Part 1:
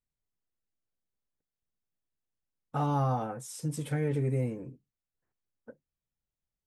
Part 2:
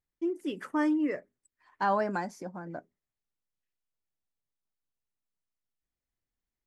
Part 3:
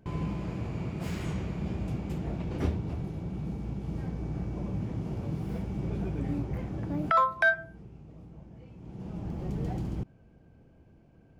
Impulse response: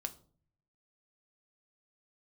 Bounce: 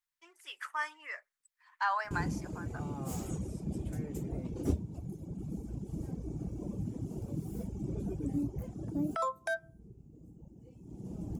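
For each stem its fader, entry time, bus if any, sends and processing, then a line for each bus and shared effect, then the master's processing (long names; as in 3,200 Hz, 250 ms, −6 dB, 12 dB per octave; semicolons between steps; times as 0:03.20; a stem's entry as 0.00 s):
−16.5 dB, 0.00 s, no send, no processing
+1.5 dB, 0.00 s, no send, high-pass filter 1,000 Hz 24 dB per octave
−2.0 dB, 2.05 s, no send, reverb reduction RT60 2 s; drawn EQ curve 180 Hz 0 dB, 280 Hz +5 dB, 1,900 Hz −13 dB, 4,500 Hz −4 dB, 7,100 Hz +11 dB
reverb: not used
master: no processing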